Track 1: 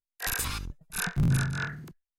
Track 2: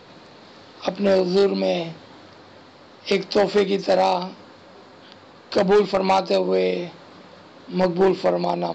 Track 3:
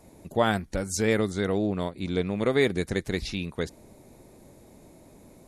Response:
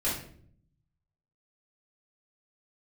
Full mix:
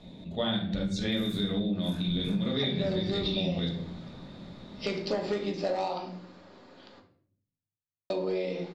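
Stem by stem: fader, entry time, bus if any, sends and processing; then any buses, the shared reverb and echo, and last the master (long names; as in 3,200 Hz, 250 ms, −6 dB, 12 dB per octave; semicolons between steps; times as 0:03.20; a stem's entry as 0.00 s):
−17.0 dB, 0.90 s, bus A, send −9 dB, no processing
−12.0 dB, 1.75 s, muted 0:07.00–0:08.10, no bus, send −8 dB, no processing
−4.0 dB, 0.00 s, bus A, send −11.5 dB, low-pass with resonance 3,600 Hz, resonance Q 13; parametric band 180 Hz +13.5 dB 0.84 octaves
bus A: 0.0 dB, volume swells 140 ms; downward compressor, threshold −31 dBFS, peak gain reduction 15.5 dB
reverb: on, RT60 0.60 s, pre-delay 3 ms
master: downward compressor 4 to 1, threshold −27 dBFS, peak gain reduction 9 dB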